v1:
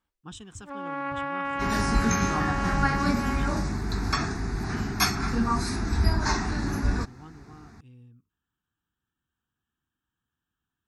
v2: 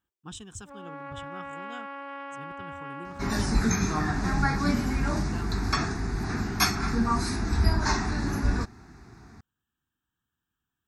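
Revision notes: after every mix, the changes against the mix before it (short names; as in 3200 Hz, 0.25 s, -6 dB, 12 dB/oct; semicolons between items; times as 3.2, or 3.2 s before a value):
speech: add high shelf 6700 Hz +6 dB; first sound: add ladder high-pass 320 Hz, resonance 55%; second sound: entry +1.60 s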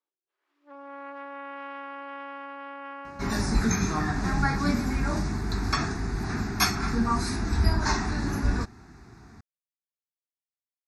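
speech: muted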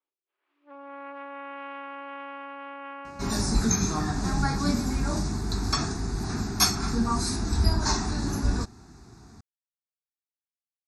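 first sound: add synth low-pass 2400 Hz, resonance Q 2.4; master: add graphic EQ 2000/4000/8000 Hz -8/+3/+7 dB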